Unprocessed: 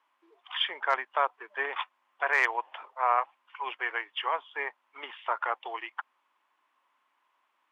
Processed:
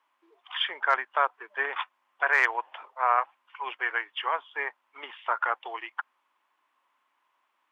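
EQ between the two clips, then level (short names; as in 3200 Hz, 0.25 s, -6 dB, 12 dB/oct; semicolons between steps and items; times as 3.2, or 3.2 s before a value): dynamic EQ 1500 Hz, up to +6 dB, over -42 dBFS, Q 2.7; 0.0 dB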